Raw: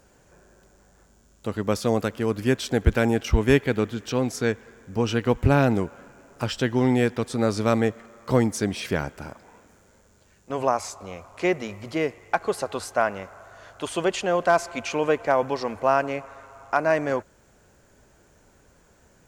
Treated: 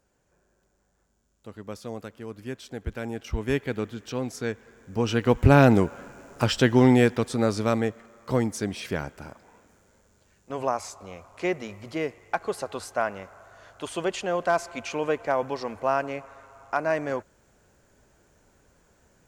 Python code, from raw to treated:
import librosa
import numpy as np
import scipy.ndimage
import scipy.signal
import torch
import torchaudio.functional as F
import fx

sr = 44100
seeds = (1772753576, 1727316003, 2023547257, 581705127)

y = fx.gain(x, sr, db=fx.line((2.88, -13.5), (3.69, -6.0), (4.5, -6.0), (5.66, 4.0), (6.79, 4.0), (7.89, -4.0)))